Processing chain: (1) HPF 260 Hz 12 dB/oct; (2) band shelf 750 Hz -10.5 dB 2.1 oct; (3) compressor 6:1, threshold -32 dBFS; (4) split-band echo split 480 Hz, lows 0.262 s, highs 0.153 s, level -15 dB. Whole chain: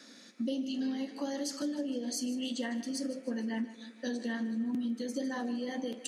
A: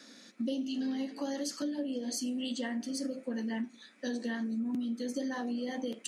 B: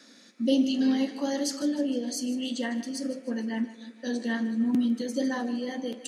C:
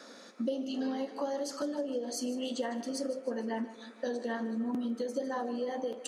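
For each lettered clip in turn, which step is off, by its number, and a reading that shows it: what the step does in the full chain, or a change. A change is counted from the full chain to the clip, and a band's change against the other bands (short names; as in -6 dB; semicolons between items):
4, echo-to-direct -13.5 dB to none; 3, mean gain reduction 5.0 dB; 2, 1 kHz band +8.0 dB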